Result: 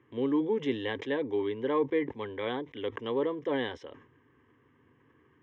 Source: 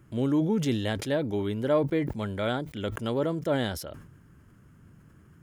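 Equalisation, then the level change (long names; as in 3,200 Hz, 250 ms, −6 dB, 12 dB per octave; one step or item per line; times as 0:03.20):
high-frequency loss of the air 110 metres
loudspeaker in its box 250–4,900 Hz, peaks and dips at 340 Hz −8 dB, 810 Hz −8 dB, 2,500 Hz −8 dB
phaser with its sweep stopped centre 930 Hz, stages 8
+5.5 dB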